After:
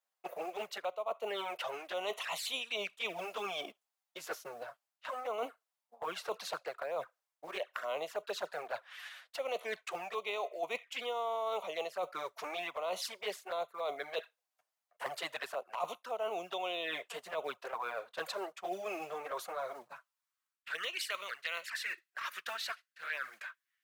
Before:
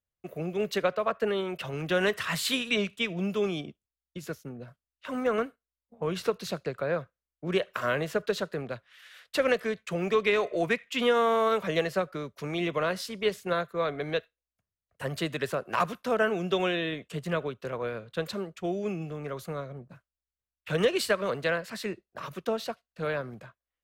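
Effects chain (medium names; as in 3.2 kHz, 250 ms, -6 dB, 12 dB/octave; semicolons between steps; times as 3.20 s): short-mantissa float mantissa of 4-bit; high-pass sweep 770 Hz -> 1.7 kHz, 19.53–21.25 s; touch-sensitive flanger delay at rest 10.2 ms, full sweep at -26 dBFS; reverse; compression 5:1, threshold -44 dBFS, peak gain reduction 20 dB; reverse; trim +7.5 dB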